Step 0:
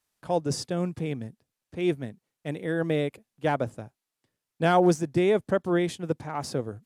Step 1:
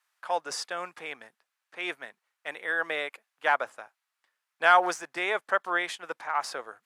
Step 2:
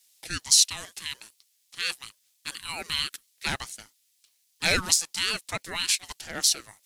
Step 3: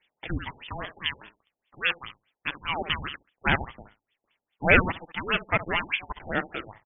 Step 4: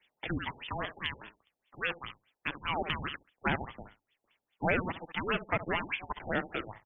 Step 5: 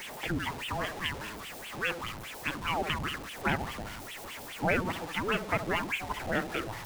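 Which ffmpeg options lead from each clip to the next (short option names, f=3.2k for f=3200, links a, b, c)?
-af "highpass=860,equalizer=f=1.4k:w=0.56:g=12.5,volume=-2.5dB"
-af "aexciter=amount=11.2:drive=7.9:freq=3k,aeval=exprs='val(0)*sin(2*PI*700*n/s+700*0.25/3.2*sin(2*PI*3.2*n/s))':c=same,volume=-4.5dB"
-af "aecho=1:1:67|134:0.224|0.0358,alimiter=level_in=8.5dB:limit=-1dB:release=50:level=0:latency=1,afftfilt=real='re*lt(b*sr/1024,870*pow(3600/870,0.5+0.5*sin(2*PI*4.9*pts/sr)))':imag='im*lt(b*sr/1024,870*pow(3600/870,0.5+0.5*sin(2*PI*4.9*pts/sr)))':win_size=1024:overlap=0.75"
-filter_complex "[0:a]acrossover=split=110|920|2900[a][b][c][d];[a]acompressor=threshold=-45dB:ratio=4[e];[b]acompressor=threshold=-30dB:ratio=4[f];[c]acompressor=threshold=-35dB:ratio=4[g];[d]acompressor=threshold=-45dB:ratio=4[h];[e][f][g][h]amix=inputs=4:normalize=0"
-af "aeval=exprs='val(0)+0.5*0.0158*sgn(val(0))':c=same"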